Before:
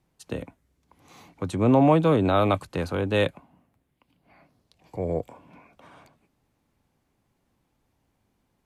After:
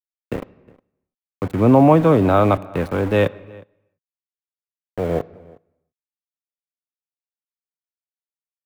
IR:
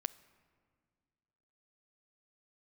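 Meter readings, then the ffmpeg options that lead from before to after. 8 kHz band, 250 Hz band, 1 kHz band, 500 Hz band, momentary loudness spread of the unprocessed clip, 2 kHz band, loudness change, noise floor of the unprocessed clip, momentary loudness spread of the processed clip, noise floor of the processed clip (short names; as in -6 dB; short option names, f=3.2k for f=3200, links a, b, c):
n/a, +6.0 dB, +6.0 dB, +6.0 dB, 18 LU, +4.0 dB, +6.5 dB, -74 dBFS, 19 LU, under -85 dBFS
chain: -filter_complex "[0:a]aeval=exprs='val(0)*gte(abs(val(0)),0.0266)':c=same,asplit=2[a][b];[b]adelay=361.5,volume=-24dB,highshelf=f=4k:g=-8.13[c];[a][c]amix=inputs=2:normalize=0,asplit=2[d][e];[1:a]atrim=start_sample=2205,afade=t=out:st=0.4:d=0.01,atrim=end_sample=18081,lowpass=2.6k[f];[e][f]afir=irnorm=-1:irlink=0,volume=7.5dB[g];[d][g]amix=inputs=2:normalize=0,volume=-3.5dB"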